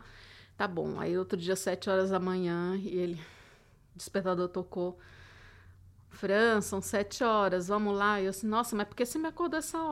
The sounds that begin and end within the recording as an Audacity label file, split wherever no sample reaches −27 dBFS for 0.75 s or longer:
4.150000	4.870000	sound